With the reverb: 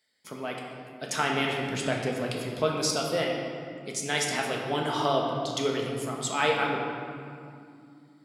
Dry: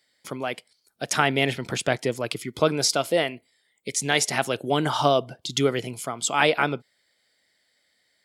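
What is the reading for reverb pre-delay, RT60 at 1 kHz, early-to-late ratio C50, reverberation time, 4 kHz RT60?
5 ms, 2.4 s, 1.5 dB, 2.5 s, 1.5 s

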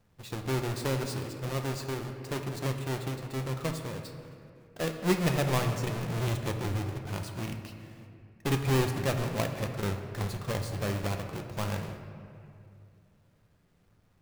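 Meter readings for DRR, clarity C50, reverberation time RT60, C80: 4.0 dB, 7.0 dB, 2.4 s, 7.5 dB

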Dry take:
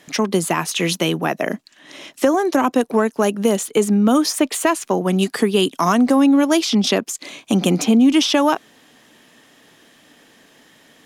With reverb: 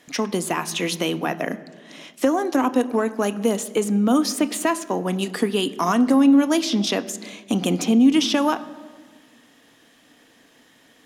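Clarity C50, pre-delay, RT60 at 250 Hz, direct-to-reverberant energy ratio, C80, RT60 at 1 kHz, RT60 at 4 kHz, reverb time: 16.5 dB, 3 ms, 1.9 s, 11.0 dB, 17.5 dB, 1.5 s, 1.1 s, 1.6 s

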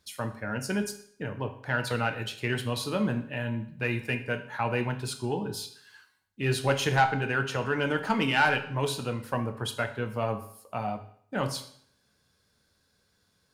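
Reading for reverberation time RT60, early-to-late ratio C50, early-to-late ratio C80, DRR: 0.60 s, 11.0 dB, 14.5 dB, 6.0 dB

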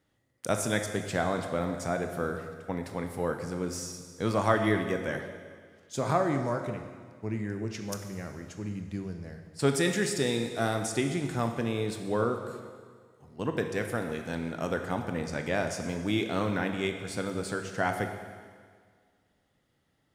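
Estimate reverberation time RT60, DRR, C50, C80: 1.8 s, 5.0 dB, 6.5 dB, 8.0 dB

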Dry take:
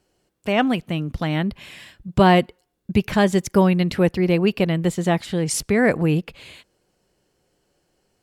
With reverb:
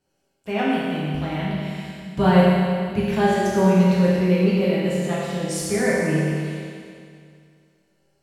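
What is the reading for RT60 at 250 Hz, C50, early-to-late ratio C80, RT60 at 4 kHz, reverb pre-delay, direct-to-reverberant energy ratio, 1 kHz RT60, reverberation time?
2.3 s, −3.0 dB, −1.0 dB, 2.2 s, 5 ms, −9.0 dB, 2.3 s, 2.3 s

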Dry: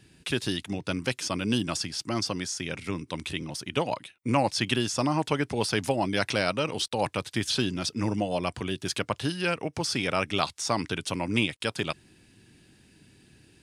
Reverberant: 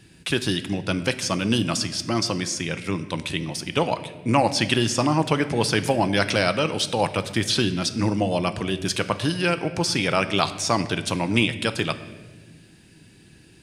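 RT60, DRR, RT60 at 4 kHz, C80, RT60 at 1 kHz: 1.2 s, 10.0 dB, 1.0 s, 14.5 dB, 1.1 s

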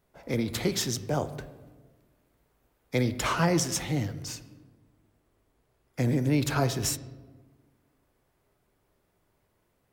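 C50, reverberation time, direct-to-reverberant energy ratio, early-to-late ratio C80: 14.5 dB, 1.4 s, 12.0 dB, 16.5 dB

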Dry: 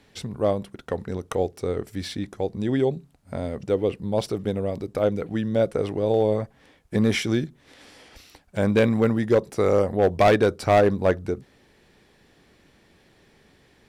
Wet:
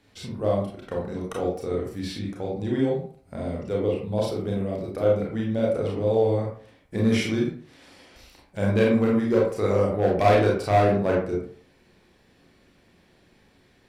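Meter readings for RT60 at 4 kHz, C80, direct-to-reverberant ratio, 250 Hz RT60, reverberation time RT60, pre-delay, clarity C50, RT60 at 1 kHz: 0.30 s, 7.5 dB, −3.5 dB, 0.45 s, 0.50 s, 27 ms, 3.0 dB, 0.50 s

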